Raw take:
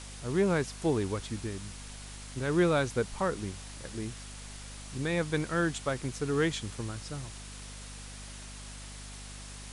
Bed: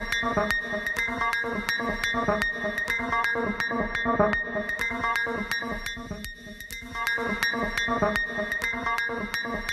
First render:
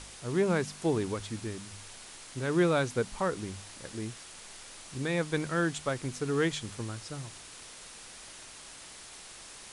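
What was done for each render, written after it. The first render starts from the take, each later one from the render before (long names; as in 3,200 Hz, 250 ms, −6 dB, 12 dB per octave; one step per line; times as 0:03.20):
hum removal 50 Hz, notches 5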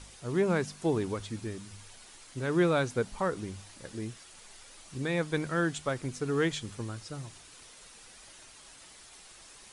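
broadband denoise 7 dB, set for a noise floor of −49 dBFS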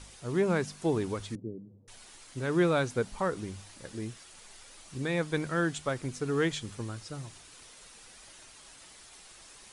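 0:01.35–0:01.88: Chebyshev band-pass filter 120–510 Hz, order 3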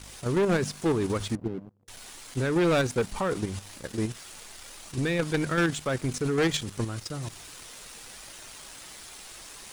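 output level in coarse steps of 9 dB
leveller curve on the samples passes 3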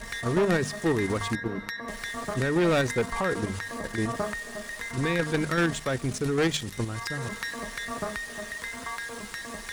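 mix in bed −8.5 dB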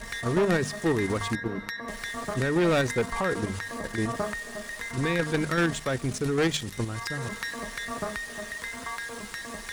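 no processing that can be heard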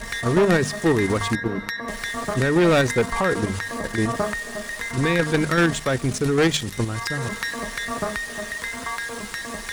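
level +6 dB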